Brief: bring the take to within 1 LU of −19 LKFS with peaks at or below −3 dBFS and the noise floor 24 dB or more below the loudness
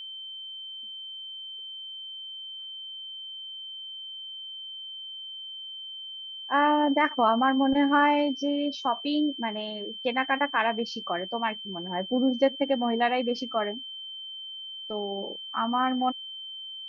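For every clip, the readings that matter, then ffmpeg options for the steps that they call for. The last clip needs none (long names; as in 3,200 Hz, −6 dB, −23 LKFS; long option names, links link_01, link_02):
interfering tone 3,100 Hz; level of the tone −37 dBFS; integrated loudness −28.5 LKFS; sample peak −10.5 dBFS; target loudness −19.0 LKFS
→ -af "bandreject=frequency=3100:width=30"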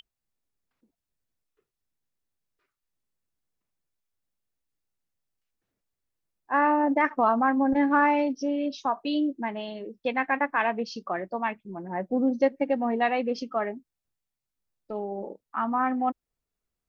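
interfering tone none found; integrated loudness −26.5 LKFS; sample peak −11.0 dBFS; target loudness −19.0 LKFS
→ -af "volume=7.5dB"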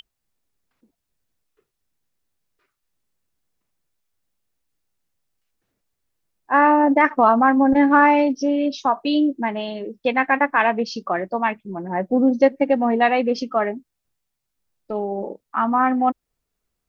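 integrated loudness −19.0 LKFS; sample peak −3.5 dBFS; background noise floor −79 dBFS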